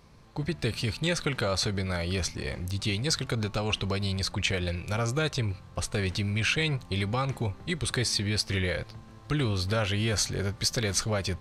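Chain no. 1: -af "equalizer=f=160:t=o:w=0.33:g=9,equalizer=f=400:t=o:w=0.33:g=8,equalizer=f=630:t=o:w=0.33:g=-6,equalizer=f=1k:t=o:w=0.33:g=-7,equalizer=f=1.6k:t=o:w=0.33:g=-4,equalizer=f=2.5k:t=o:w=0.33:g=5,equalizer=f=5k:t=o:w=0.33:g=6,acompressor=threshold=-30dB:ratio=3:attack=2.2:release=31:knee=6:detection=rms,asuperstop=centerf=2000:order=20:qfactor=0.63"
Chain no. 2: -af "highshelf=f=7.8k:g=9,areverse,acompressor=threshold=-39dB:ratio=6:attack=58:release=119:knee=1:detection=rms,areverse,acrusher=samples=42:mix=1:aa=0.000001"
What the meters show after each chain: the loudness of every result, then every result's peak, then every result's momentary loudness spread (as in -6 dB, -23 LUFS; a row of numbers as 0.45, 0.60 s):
-34.0, -40.0 LUFS; -20.5, -23.5 dBFS; 5, 2 LU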